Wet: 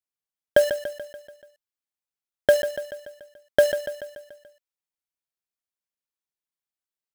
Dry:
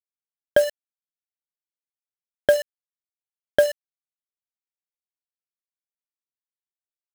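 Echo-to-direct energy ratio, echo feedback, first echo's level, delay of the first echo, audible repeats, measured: -9.0 dB, 56%, -10.5 dB, 0.144 s, 5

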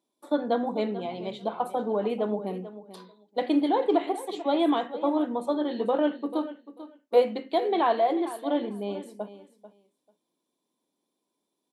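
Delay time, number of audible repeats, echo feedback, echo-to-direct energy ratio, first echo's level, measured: 0.441 s, 2, 16%, -14.5 dB, -14.5 dB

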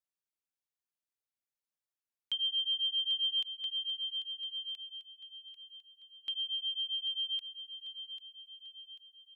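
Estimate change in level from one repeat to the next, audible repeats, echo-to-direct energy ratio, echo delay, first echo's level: -6.0 dB, 5, -9.0 dB, 0.792 s, -10.0 dB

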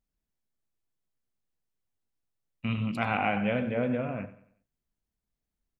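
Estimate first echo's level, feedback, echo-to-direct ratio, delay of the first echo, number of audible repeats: -16.0 dB, 41%, -15.0 dB, 93 ms, 3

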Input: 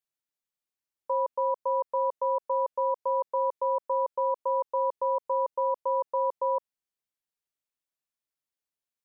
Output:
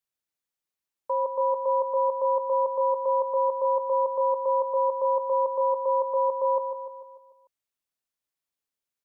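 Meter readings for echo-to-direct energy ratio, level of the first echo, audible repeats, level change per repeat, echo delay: -6.5 dB, -8.0 dB, 6, -5.5 dB, 0.148 s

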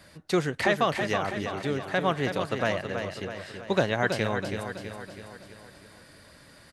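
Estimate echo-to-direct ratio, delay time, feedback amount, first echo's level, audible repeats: -5.5 dB, 0.326 s, 53%, -7.0 dB, 6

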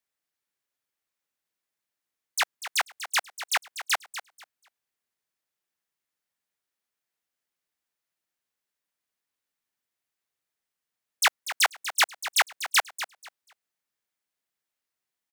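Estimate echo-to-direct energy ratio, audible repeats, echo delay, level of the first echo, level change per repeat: -12.0 dB, 2, 0.243 s, -12.0 dB, -13.5 dB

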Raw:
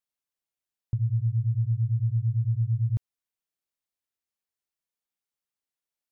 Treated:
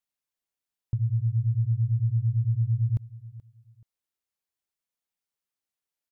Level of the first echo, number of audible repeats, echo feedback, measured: -19.0 dB, 2, 29%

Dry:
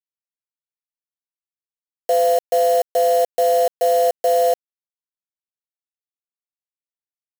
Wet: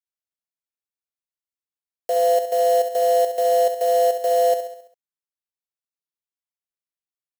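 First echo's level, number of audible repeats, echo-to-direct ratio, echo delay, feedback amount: -10.0 dB, 5, -8.5 dB, 67 ms, 53%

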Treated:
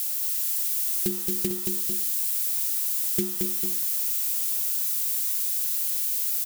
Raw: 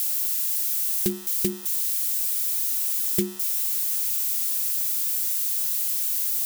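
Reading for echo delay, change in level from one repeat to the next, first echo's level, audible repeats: 0.224 s, -5.5 dB, -4.0 dB, 2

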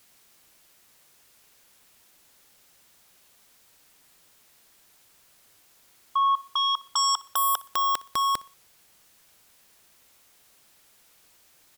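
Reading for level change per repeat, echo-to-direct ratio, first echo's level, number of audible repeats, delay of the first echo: -8.5 dB, -20.5 dB, -21.0 dB, 2, 61 ms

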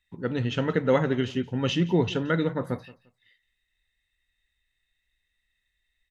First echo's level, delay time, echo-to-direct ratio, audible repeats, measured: -20.0 dB, 0.174 s, -20.0 dB, 2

